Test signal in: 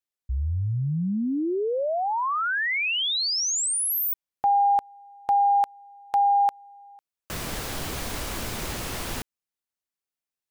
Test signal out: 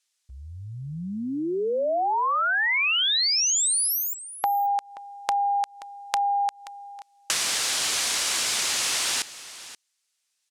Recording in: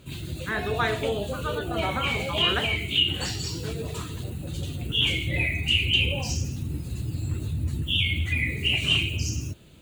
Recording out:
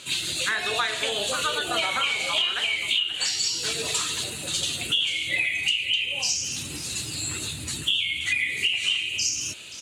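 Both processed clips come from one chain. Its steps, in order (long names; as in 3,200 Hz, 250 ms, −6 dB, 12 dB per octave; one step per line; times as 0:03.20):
meter weighting curve ITU-R 468
downward compressor 12 to 1, threshold −30 dBFS
on a send: single-tap delay 529 ms −16 dB
on the sum: level +8 dB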